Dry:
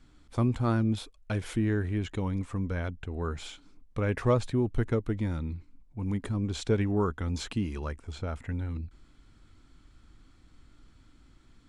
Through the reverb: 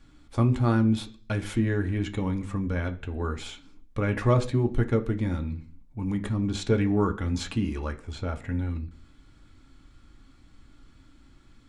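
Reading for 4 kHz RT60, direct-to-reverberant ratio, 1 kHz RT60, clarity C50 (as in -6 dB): 0.50 s, 4.0 dB, 0.40 s, 15.5 dB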